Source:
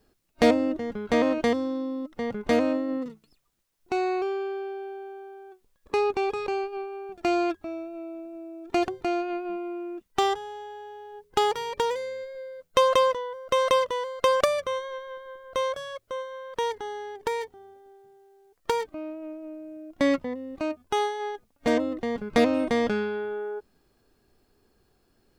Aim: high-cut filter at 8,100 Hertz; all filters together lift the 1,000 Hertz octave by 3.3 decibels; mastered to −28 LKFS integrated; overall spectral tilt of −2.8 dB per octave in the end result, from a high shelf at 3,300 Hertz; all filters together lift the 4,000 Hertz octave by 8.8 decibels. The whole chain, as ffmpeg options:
ffmpeg -i in.wav -af "lowpass=8100,equalizer=frequency=1000:width_type=o:gain=3,highshelf=frequency=3300:gain=7,equalizer=frequency=4000:width_type=o:gain=6.5,volume=-3dB" out.wav

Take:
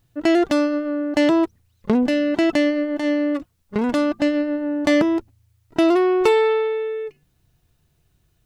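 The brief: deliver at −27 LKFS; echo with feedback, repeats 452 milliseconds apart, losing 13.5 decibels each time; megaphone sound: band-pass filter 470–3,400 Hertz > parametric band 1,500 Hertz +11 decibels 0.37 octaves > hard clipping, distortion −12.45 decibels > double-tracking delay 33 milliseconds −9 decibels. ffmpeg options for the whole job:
ffmpeg -i in.wav -filter_complex "[0:a]highpass=470,lowpass=3400,equalizer=frequency=1500:width_type=o:width=0.37:gain=11,aecho=1:1:452|904:0.211|0.0444,asoftclip=type=hard:threshold=-17.5dB,asplit=2[link_01][link_02];[link_02]adelay=33,volume=-9dB[link_03];[link_01][link_03]amix=inputs=2:normalize=0,volume=-2dB" out.wav

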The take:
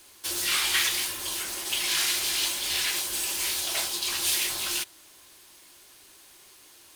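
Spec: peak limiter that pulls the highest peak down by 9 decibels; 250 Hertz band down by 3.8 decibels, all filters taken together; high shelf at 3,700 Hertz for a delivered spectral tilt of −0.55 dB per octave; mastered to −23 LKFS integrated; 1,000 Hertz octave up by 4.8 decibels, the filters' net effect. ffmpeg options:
ffmpeg -i in.wav -af "equalizer=frequency=250:width_type=o:gain=-7.5,equalizer=frequency=1000:width_type=o:gain=7,highshelf=frequency=3700:gain=-8.5,volume=9.5dB,alimiter=limit=-14.5dB:level=0:latency=1" out.wav

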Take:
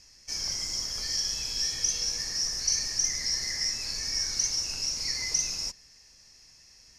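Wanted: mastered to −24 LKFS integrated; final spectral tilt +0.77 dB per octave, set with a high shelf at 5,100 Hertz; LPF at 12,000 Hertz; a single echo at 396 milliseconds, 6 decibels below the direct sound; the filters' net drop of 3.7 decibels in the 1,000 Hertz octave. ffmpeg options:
ffmpeg -i in.wav -af "lowpass=12000,equalizer=frequency=1000:width_type=o:gain=-4.5,highshelf=frequency=5100:gain=-4.5,aecho=1:1:396:0.501,volume=5.5dB" out.wav

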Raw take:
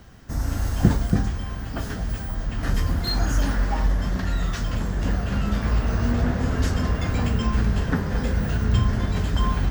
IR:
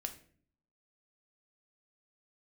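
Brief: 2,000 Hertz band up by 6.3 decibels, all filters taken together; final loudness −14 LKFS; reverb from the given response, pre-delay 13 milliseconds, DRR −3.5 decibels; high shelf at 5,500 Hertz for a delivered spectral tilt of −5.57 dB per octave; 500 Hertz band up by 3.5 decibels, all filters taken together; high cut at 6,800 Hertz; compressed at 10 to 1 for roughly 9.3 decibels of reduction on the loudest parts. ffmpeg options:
-filter_complex "[0:a]lowpass=6800,equalizer=frequency=500:width_type=o:gain=4,equalizer=frequency=2000:width_type=o:gain=8.5,highshelf=frequency=5500:gain=-5,acompressor=threshold=-20dB:ratio=10,asplit=2[link_01][link_02];[1:a]atrim=start_sample=2205,adelay=13[link_03];[link_02][link_03]afir=irnorm=-1:irlink=0,volume=5dB[link_04];[link_01][link_04]amix=inputs=2:normalize=0,volume=8dB"

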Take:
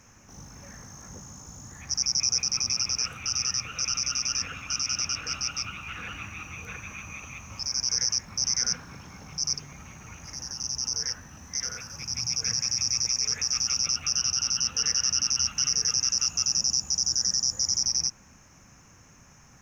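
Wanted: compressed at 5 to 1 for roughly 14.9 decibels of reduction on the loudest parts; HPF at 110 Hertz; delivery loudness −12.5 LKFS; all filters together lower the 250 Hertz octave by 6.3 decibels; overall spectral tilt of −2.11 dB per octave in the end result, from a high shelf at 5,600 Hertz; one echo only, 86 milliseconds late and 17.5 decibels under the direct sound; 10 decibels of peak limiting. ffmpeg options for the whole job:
ffmpeg -i in.wav -af "highpass=110,equalizer=frequency=250:width_type=o:gain=-9,highshelf=frequency=5600:gain=6,acompressor=threshold=-36dB:ratio=5,alimiter=level_in=10dB:limit=-24dB:level=0:latency=1,volume=-10dB,aecho=1:1:86:0.133,volume=29dB" out.wav

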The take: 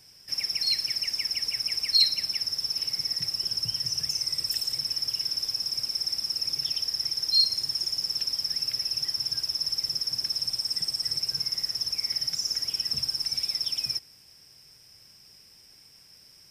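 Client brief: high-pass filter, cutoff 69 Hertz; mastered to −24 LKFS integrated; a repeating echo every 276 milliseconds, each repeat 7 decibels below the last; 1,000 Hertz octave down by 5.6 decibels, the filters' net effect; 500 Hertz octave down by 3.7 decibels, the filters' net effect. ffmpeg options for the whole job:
ffmpeg -i in.wav -af "highpass=69,equalizer=frequency=500:width_type=o:gain=-3,equalizer=frequency=1000:width_type=o:gain=-6.5,aecho=1:1:276|552|828|1104|1380:0.447|0.201|0.0905|0.0407|0.0183,volume=1dB" out.wav

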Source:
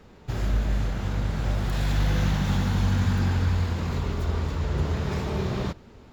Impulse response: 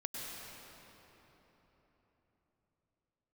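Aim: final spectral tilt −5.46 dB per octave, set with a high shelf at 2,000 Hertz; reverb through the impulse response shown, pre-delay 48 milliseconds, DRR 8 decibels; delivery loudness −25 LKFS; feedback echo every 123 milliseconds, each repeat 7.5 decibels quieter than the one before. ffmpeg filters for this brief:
-filter_complex "[0:a]highshelf=frequency=2000:gain=7.5,aecho=1:1:123|246|369|492|615:0.422|0.177|0.0744|0.0312|0.0131,asplit=2[link_01][link_02];[1:a]atrim=start_sample=2205,adelay=48[link_03];[link_02][link_03]afir=irnorm=-1:irlink=0,volume=-9dB[link_04];[link_01][link_04]amix=inputs=2:normalize=0"

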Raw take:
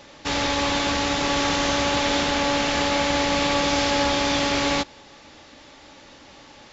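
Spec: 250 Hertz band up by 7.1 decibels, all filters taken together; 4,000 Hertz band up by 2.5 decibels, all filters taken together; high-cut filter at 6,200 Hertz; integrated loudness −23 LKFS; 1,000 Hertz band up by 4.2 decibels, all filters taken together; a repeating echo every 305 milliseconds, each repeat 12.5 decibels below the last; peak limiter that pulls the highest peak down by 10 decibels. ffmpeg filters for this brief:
ffmpeg -i in.wav -af "lowpass=6200,equalizer=frequency=250:width_type=o:gain=8,equalizer=frequency=1000:width_type=o:gain=4.5,equalizer=frequency=4000:width_type=o:gain=3.5,alimiter=limit=-15dB:level=0:latency=1,aecho=1:1:305|610|915:0.237|0.0569|0.0137,volume=0.5dB" out.wav

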